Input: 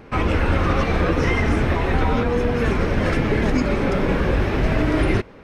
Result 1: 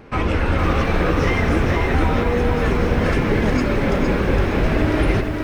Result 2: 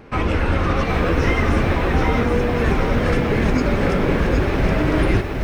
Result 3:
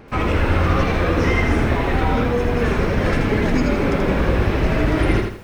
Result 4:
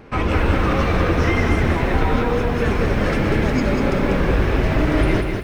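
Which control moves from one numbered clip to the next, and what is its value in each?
feedback echo at a low word length, delay time: 463, 769, 81, 193 milliseconds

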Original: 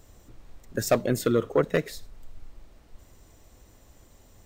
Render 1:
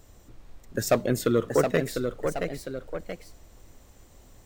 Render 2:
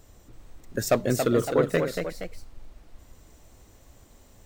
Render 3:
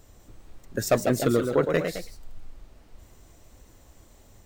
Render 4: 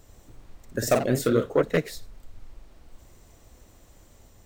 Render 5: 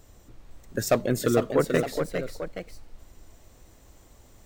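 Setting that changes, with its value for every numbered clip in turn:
delay with pitch and tempo change per echo, delay time: 771, 330, 202, 94, 507 milliseconds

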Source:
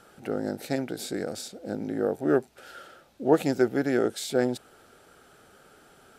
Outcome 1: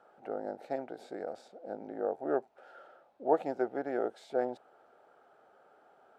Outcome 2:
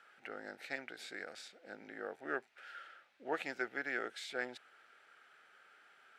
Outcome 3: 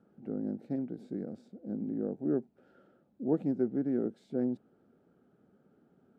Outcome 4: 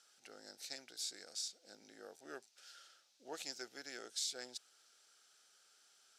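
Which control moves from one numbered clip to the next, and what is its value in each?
resonant band-pass, frequency: 740, 2,000, 210, 5,600 Hertz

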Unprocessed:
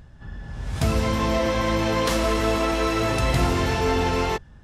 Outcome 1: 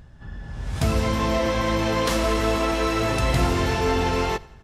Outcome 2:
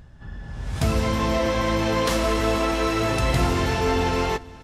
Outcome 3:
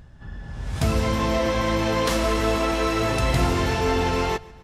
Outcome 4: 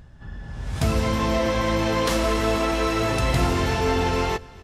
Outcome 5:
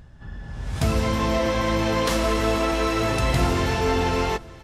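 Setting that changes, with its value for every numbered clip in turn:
repeating echo, delay time: 89, 479, 143, 254, 927 milliseconds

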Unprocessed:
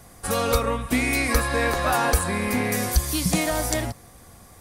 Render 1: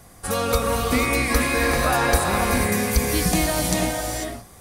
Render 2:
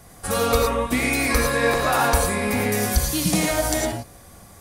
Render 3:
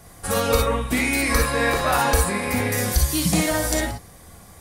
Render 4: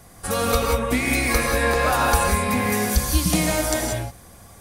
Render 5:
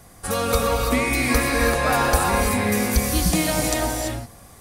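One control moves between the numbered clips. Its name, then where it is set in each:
reverb whose tail is shaped and stops, gate: 520, 130, 80, 210, 360 milliseconds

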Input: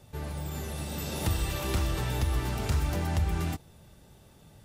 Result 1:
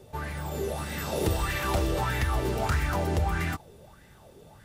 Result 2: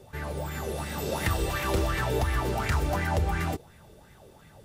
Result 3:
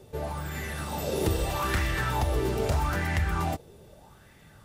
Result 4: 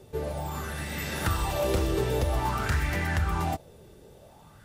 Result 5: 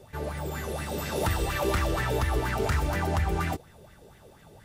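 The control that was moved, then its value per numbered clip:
auto-filter bell, speed: 1.6, 2.8, 0.8, 0.51, 4.2 Hertz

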